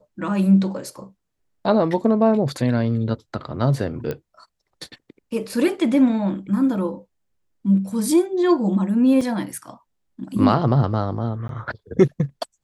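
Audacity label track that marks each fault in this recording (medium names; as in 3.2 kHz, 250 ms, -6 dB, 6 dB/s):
4.110000	4.110000	pop -15 dBFS
9.210000	9.210000	dropout 3.6 ms
11.480000	11.490000	dropout 12 ms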